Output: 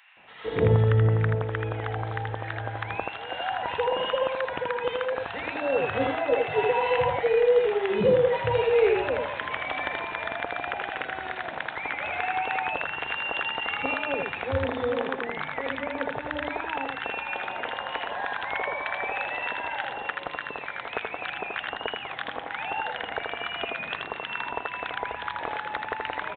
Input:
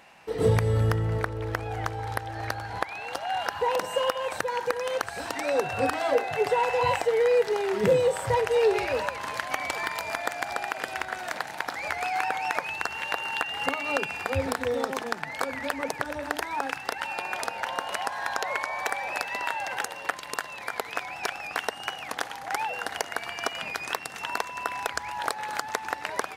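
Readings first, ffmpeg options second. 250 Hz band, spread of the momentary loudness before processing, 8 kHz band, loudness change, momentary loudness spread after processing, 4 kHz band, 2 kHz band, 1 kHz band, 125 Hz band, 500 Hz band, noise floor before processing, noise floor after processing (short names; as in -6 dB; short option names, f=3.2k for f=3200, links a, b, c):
+1.5 dB, 9 LU, under -40 dB, +1.0 dB, 11 LU, 0.0 dB, +0.5 dB, -1.0 dB, +3.0 dB, +1.5 dB, -41 dBFS, -38 dBFS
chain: -filter_complex "[0:a]asplit=2[a][b];[b]aecho=0:1:80:0.668[c];[a][c]amix=inputs=2:normalize=0,aeval=exprs='0.422*(cos(1*acos(clip(val(0)/0.422,-1,1)))-cos(1*PI/2))+0.0188*(cos(4*acos(clip(val(0)/0.422,-1,1)))-cos(4*PI/2))':c=same,highpass=43,aresample=8000,aresample=44100,acrossover=split=1100[d][e];[d]adelay=170[f];[f][e]amix=inputs=2:normalize=0"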